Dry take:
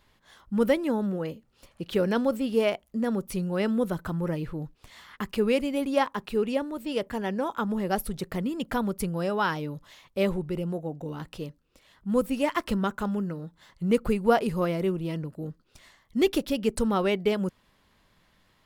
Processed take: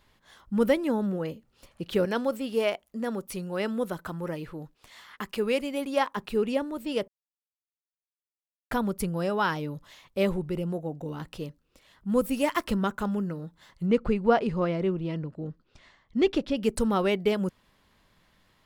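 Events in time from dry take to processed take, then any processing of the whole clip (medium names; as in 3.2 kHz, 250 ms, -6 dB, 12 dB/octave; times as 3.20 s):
2.05–6.17 s: bass shelf 230 Hz -10.5 dB
7.08–8.71 s: mute
12.22–12.66 s: treble shelf 7.2 kHz +7.5 dB
13.86–16.57 s: distance through air 120 m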